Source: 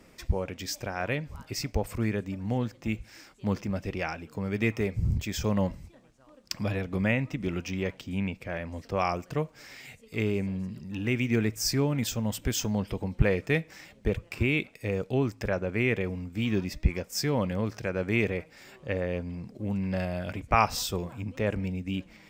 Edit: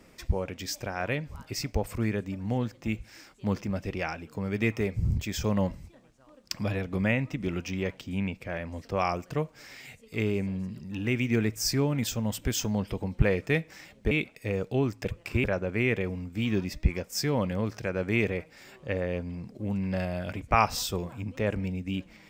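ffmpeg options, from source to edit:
-filter_complex "[0:a]asplit=4[s0][s1][s2][s3];[s0]atrim=end=14.112[s4];[s1]atrim=start=14.498:end=15.442[s5];[s2]atrim=start=14.108:end=14.502[s6];[s3]atrim=start=15.438[s7];[s4][s5]acrossfade=d=0.004:c1=hsin:c2=hsin[s8];[s8][s6]acrossfade=d=0.004:c1=hsin:c2=hsin[s9];[s9][s7]acrossfade=d=0.004:c1=hsin:c2=hsin"

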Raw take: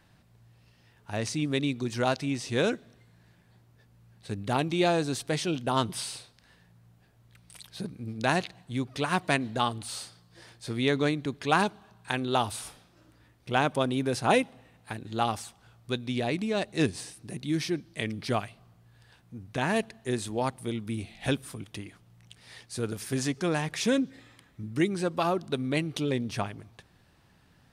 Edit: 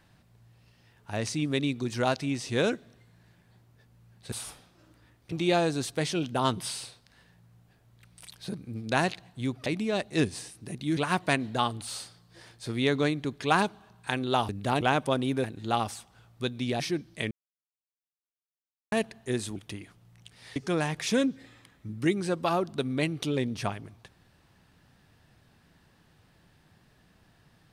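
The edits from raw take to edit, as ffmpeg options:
-filter_complex "[0:a]asplit=13[s0][s1][s2][s3][s4][s5][s6][s7][s8][s9][s10][s11][s12];[s0]atrim=end=4.322[s13];[s1]atrim=start=12.498:end=13.502[s14];[s2]atrim=start=4.638:end=8.982[s15];[s3]atrim=start=16.278:end=17.592[s16];[s4]atrim=start=8.978:end=12.502[s17];[s5]atrim=start=4.318:end=4.642[s18];[s6]atrim=start=13.498:end=14.132[s19];[s7]atrim=start=14.918:end=16.282[s20];[s8]atrim=start=17.588:end=18.1,asetpts=PTS-STARTPTS,afade=t=out:st=0.508:d=0.004:c=hsin[s21];[s9]atrim=start=18.1:end=19.71,asetpts=PTS-STARTPTS,volume=0[s22];[s10]atrim=start=19.71:end=20.352,asetpts=PTS-STARTPTS,afade=t=in:d=0.004:c=hsin[s23];[s11]atrim=start=21.608:end=22.612[s24];[s12]atrim=start=23.298[s25];[s13][s14]acrossfade=d=0.004:c1=hsin:c2=hsin[s26];[s26][s15]acrossfade=d=0.004:c1=hsin:c2=hsin[s27];[s27][s16]acrossfade=d=0.004:c1=hsin:c2=hsin[s28];[s28][s17]acrossfade=d=0.004:c1=hsin:c2=hsin[s29];[s29][s18]acrossfade=d=0.004:c1=hsin:c2=hsin[s30];[s30][s19]acrossfade=d=0.004:c1=hsin:c2=hsin[s31];[s31][s20]acrossfade=d=0.004:c1=hsin:c2=hsin[s32];[s21][s22][s23]concat=n=3:v=0:a=1[s33];[s32][s33]acrossfade=d=0.004:c1=hsin:c2=hsin[s34];[s34][s24]acrossfade=d=0.004:c1=hsin:c2=hsin[s35];[s35][s25]acrossfade=d=0.004:c1=hsin:c2=hsin"

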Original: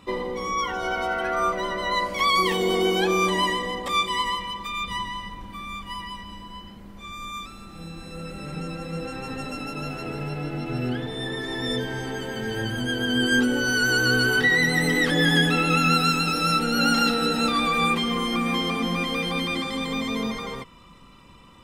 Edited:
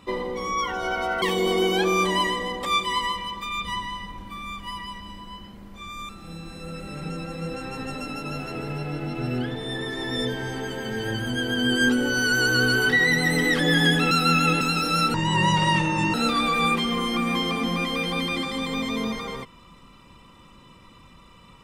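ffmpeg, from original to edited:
-filter_complex "[0:a]asplit=7[s0][s1][s2][s3][s4][s5][s6];[s0]atrim=end=1.222[s7];[s1]atrim=start=2.448:end=7.322[s8];[s2]atrim=start=7.598:end=15.622[s9];[s3]atrim=start=15.618:end=16.122,asetpts=PTS-STARTPTS,areverse[s10];[s4]atrim=start=16.118:end=16.654[s11];[s5]atrim=start=16.65:end=17.33,asetpts=PTS-STARTPTS,asetrate=29988,aresample=44100[s12];[s6]atrim=start=17.326[s13];[s7][s8]acrossfade=d=0.004:c1=hsin:c2=hsin[s14];[s14][s9]acrossfade=d=0.004:c1=hsin:c2=hsin[s15];[s15][s10]acrossfade=d=0.004:c1=hsin:c2=hsin[s16];[s16][s11]acrossfade=d=0.004:c1=hsin:c2=hsin[s17];[s17][s12]acrossfade=d=0.004:c1=hsin:c2=hsin[s18];[s18][s13]acrossfade=d=0.004:c1=hsin:c2=hsin"

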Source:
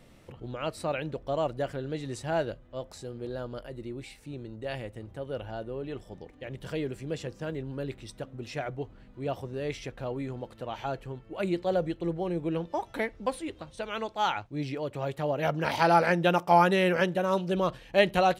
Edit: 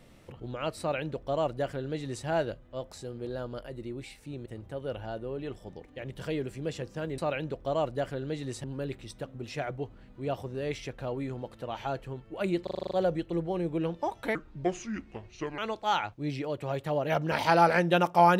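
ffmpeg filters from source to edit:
-filter_complex "[0:a]asplit=13[s0][s1][s2][s3][s4][s5][s6][s7][s8][s9][s10][s11][s12];[s0]atrim=end=4.462[s13];[s1]atrim=start=4.908:end=7.632[s14];[s2]atrim=start=0.798:end=2.262[s15];[s3]atrim=start=7.628:end=11.662[s16];[s4]atrim=start=11.618:end=11.662[s17];[s5]atrim=start=11.618:end=11.662[s18];[s6]atrim=start=11.618:end=11.662[s19];[s7]atrim=start=11.618:end=11.662[s20];[s8]atrim=start=11.618:end=11.662[s21];[s9]atrim=start=11.618:end=11.662[s22];[s10]atrim=start=11.618:end=13.064[s23];[s11]atrim=start=13.06:end=13.91,asetpts=PTS-STARTPTS,asetrate=30429,aresample=44100,atrim=end_sample=54326,asetpts=PTS-STARTPTS[s24];[s12]atrim=start=13.906[s25];[s13][s14]acrossfade=d=0.004:c1=hsin:c2=hsin[s26];[s26][s15]acrossfade=d=0.004:c1=hsin:c2=hsin[s27];[s27][s16]acrossfade=d=0.004:c1=hsin:c2=hsin[s28];[s28][s17]acrossfade=d=0.004:c1=hsin:c2=hsin[s29];[s29][s18]acrossfade=d=0.004:c1=hsin:c2=hsin[s30];[s30][s19]acrossfade=d=0.004:c1=hsin:c2=hsin[s31];[s31][s20]acrossfade=d=0.004:c1=hsin:c2=hsin[s32];[s32][s21]acrossfade=d=0.004:c1=hsin:c2=hsin[s33];[s33][s22]acrossfade=d=0.004:c1=hsin:c2=hsin[s34];[s34][s23]acrossfade=d=0.004:c1=hsin:c2=hsin[s35];[s35][s24]acrossfade=d=0.004:c1=hsin:c2=hsin[s36];[s36][s25]acrossfade=d=0.004:c1=hsin:c2=hsin"

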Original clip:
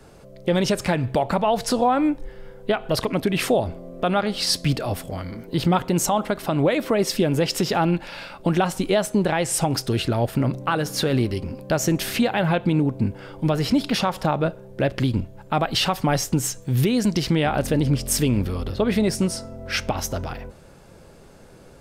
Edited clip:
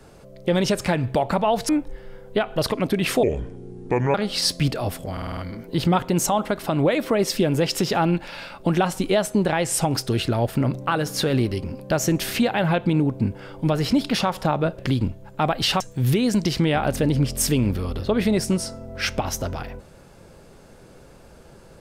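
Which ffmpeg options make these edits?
-filter_complex "[0:a]asplit=11[s0][s1][s2][s3][s4][s5][s6][s7][s8][s9][s10];[s0]atrim=end=1.692[s11];[s1]atrim=start=2.018:end=3.564[s12];[s2]atrim=start=3.56:end=4.19,asetpts=PTS-STARTPTS,asetrate=30429,aresample=44100,atrim=end_sample=40265,asetpts=PTS-STARTPTS[s13];[s3]atrim=start=4.186:end=5.222[s14];[s4]atrim=start=5.168:end=5.222[s15];[s5]atrim=start=5.168:end=5.222[s16];[s6]atrim=start=5.168:end=5.222[s17];[s7]atrim=start=5.168:end=5.222[s18];[s8]atrim=start=5.168:end=14.582[s19];[s9]atrim=start=14.908:end=15.932[s20];[s10]atrim=start=16.508[s21];[s11][s12]acrossfade=d=0.004:c1=hsin:c2=hsin[s22];[s22][s13]acrossfade=d=0.004:c1=hsin:c2=hsin[s23];[s23][s14]acrossfade=d=0.004:c1=hsin:c2=hsin[s24];[s24][s15]acrossfade=d=0.004:c1=hsin:c2=hsin[s25];[s25][s16]acrossfade=d=0.004:c1=hsin:c2=hsin[s26];[s26][s17]acrossfade=d=0.004:c1=hsin:c2=hsin[s27];[s27][s18]acrossfade=d=0.004:c1=hsin:c2=hsin[s28];[s28][s19]acrossfade=d=0.004:c1=hsin:c2=hsin[s29];[s29][s20]acrossfade=d=0.004:c1=hsin:c2=hsin[s30];[s30][s21]acrossfade=d=0.004:c1=hsin:c2=hsin"

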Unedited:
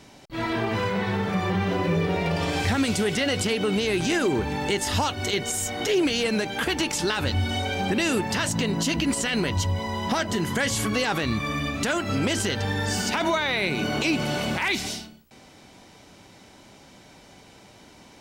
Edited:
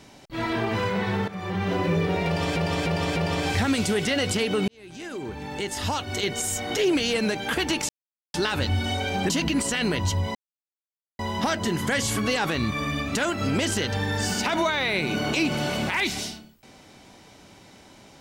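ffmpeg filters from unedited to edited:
-filter_complex "[0:a]asplit=9[s0][s1][s2][s3][s4][s5][s6][s7][s8];[s0]atrim=end=1.28,asetpts=PTS-STARTPTS,afade=t=out:st=1.276:d=0.004:c=hsin:silence=0.188365[s9];[s1]atrim=start=1.28:end=2.562,asetpts=PTS-STARTPTS,afade=t=in:d=0.45:silence=0.188365[s10];[s2]atrim=start=2.258:end=2.562[s11];[s3]atrim=start=2.258:end=2.562[s12];[s4]atrim=start=2.258:end=3.78,asetpts=PTS-STARTPTS,afade=t=out:st=1.518:d=0.004:c=hsin[s13];[s5]atrim=start=3.78:end=6.99,asetpts=PTS-STARTPTS,afade=t=in:d=1.75,afade=t=out:st=3.206:d=0.004:c=hsin,apad=pad_dur=0.45[s14];[s6]atrim=start=6.99:end=7.952,asetpts=PTS-STARTPTS,afade=t=in:d=0.004:c=hsin[s15];[s7]atrim=start=8.818:end=9.87,asetpts=PTS-STARTPTS,afade=t=out:st=1.048:d=0.004:c=hsin,apad=pad_dur=0.84[s16];[s8]atrim=start=9.87,asetpts=PTS-STARTPTS,afade=t=in:d=0.004:c=hsin[s17];[s9][s10]concat=n=2:v=0:a=1[s18];[s18][s11]acrossfade=d=0.004:c1=hsin:c2=hsin[s19];[s19][s12]acrossfade=d=0.004:c1=hsin:c2=hsin[s20];[s13][s14][s15]concat=n=3:v=0:a=1[s21];[s20][s21]acrossfade=d=0.004:c1=hsin:c2=hsin[s22];[s16][s17]concat=n=2:v=0:a=1[s23];[s22][s23]acrossfade=d=0.004:c1=hsin:c2=hsin"

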